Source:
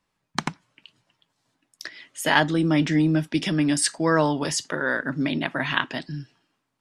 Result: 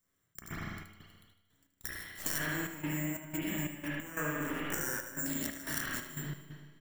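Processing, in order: minimum comb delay 0.6 ms; careless resampling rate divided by 6×, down filtered, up zero stuff; 2.38–4.74 resonant high shelf 3300 Hz -8 dB, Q 3; spring tank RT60 1.2 s, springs 33/48 ms, chirp 50 ms, DRR -7.5 dB; compressor 5:1, threshold -22 dBFS, peak gain reduction 16.5 dB; step gate "xx.xx.xx.x.xxx" 90 bpm -12 dB; resonator 86 Hz, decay 1.6 s, harmonics all, mix 50%; feedback echo 77 ms, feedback 53%, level -11 dB; gain -5 dB

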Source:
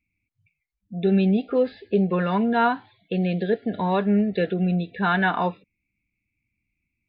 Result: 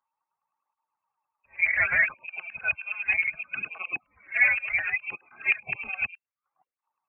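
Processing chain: whole clip reversed; HPF 240 Hz 6 dB/oct; LFO high-pass saw down 9.6 Hz 440–1600 Hz; formant shift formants -4 st; inverted band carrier 2900 Hz; tape flanging out of phase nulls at 0.66 Hz, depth 6.8 ms

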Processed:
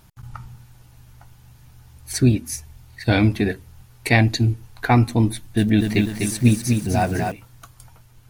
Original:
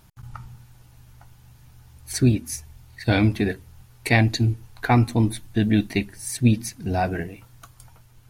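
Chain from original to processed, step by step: 5.32–7.32 lo-fi delay 0.249 s, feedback 55%, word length 7-bit, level -4.5 dB; gain +2 dB

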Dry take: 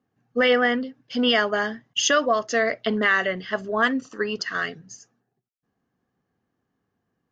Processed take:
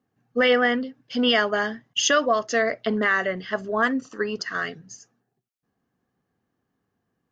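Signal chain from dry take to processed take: 2.61–4.66 dynamic EQ 3200 Hz, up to -7 dB, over -38 dBFS, Q 1.4

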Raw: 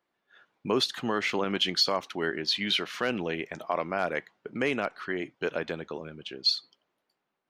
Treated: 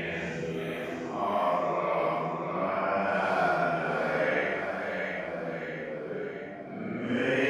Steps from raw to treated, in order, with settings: split-band echo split 550 Hz, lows 0.267 s, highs 0.102 s, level -4 dB; Paulstretch 6.5×, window 0.10 s, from 3.5

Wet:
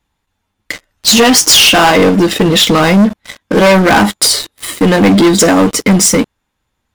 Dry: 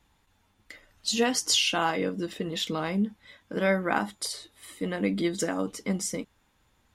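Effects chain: sample leveller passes 5; gain +8 dB

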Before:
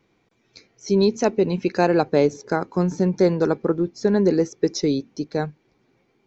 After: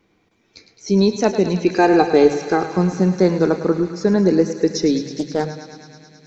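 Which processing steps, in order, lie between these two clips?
1.65–2.7 comb 2.5 ms, depth 62%; thinning echo 0.107 s, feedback 84%, high-pass 660 Hz, level -10 dB; on a send at -11.5 dB: reverb RT60 2.3 s, pre-delay 3 ms; 5.05–5.45 on the sum: Doppler distortion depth 0.23 ms; gain +2.5 dB

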